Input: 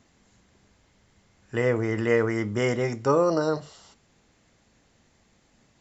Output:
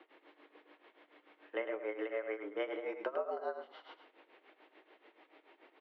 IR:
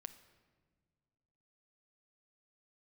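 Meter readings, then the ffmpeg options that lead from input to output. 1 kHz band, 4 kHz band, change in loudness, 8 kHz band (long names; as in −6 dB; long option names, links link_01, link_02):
−13.0 dB, −13.5 dB, −15.0 dB, can't be measured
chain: -filter_complex "[0:a]acompressor=threshold=-37dB:ratio=10,highpass=frequency=240:width_type=q:width=0.5412,highpass=frequency=240:width_type=q:width=1.307,lowpass=frequency=3200:width_type=q:width=0.5176,lowpass=frequency=3200:width_type=q:width=0.7071,lowpass=frequency=3200:width_type=q:width=1.932,afreqshift=95[link_01];[1:a]atrim=start_sample=2205,atrim=end_sample=3528[link_02];[link_01][link_02]afir=irnorm=-1:irlink=0,tremolo=f=6.9:d=0.91,asplit=2[link_03][link_04];[link_04]adelay=105,volume=-8dB,highshelf=frequency=4000:gain=-2.36[link_05];[link_03][link_05]amix=inputs=2:normalize=0,volume=11.5dB"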